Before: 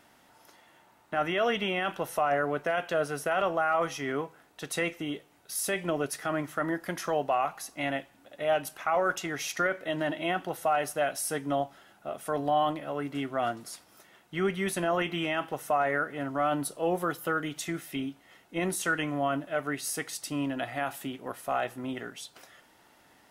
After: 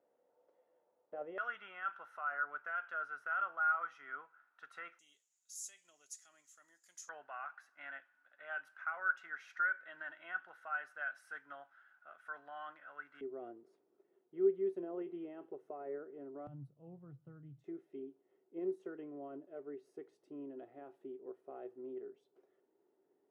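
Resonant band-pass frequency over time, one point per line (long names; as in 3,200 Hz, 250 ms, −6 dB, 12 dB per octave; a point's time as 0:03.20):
resonant band-pass, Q 10
500 Hz
from 0:01.38 1,400 Hz
from 0:04.99 6,900 Hz
from 0:07.09 1,500 Hz
from 0:13.21 390 Hz
from 0:16.47 130 Hz
from 0:17.64 390 Hz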